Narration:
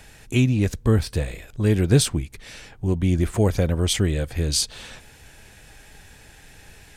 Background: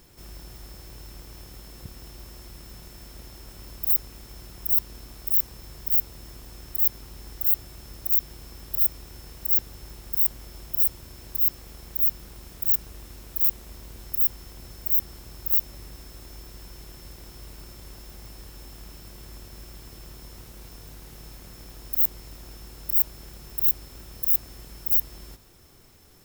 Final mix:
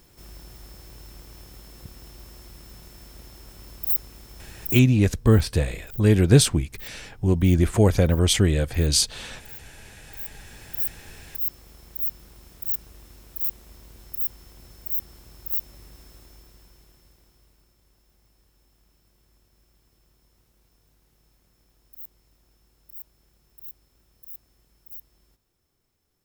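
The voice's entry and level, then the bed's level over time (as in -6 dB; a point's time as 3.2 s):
4.40 s, +2.0 dB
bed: 4.64 s -1.5 dB
5.06 s -21 dB
9.95 s -21 dB
10.62 s -5 dB
16.12 s -5 dB
17.74 s -20 dB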